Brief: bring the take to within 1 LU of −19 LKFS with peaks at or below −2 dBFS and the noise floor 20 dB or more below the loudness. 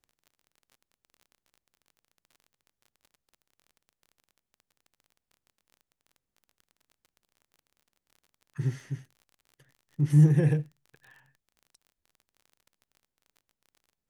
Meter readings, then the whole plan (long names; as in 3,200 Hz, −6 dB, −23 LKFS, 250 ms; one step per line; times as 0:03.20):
crackle rate 30 per second; integrated loudness −25.0 LKFS; sample peak −10.0 dBFS; target loudness −19.0 LKFS
→ click removal
level +6 dB